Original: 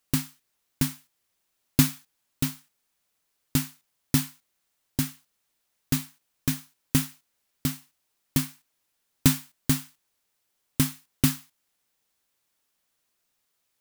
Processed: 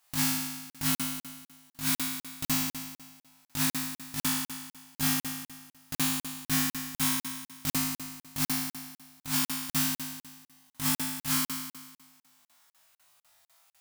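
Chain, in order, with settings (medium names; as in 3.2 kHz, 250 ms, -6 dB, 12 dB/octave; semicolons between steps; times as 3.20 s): resonant low shelf 580 Hz -8 dB, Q 3; compressor with a negative ratio -33 dBFS, ratio -1; flutter echo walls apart 3.3 m, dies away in 1.3 s; crackling interface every 0.25 s, samples 2048, zero, from 0.70 s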